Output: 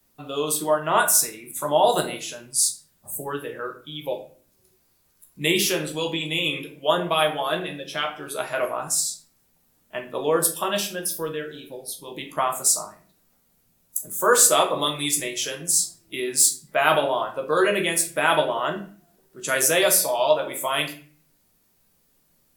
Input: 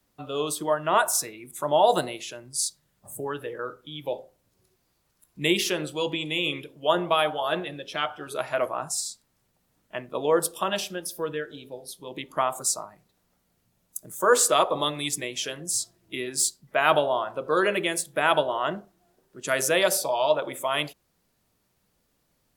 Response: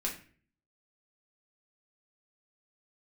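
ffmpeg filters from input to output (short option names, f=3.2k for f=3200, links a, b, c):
-filter_complex "[0:a]highshelf=f=8.2k:g=11,asplit=2[a][b];[1:a]atrim=start_sample=2205,adelay=13[c];[b][c]afir=irnorm=-1:irlink=0,volume=-5.5dB[d];[a][d]amix=inputs=2:normalize=0"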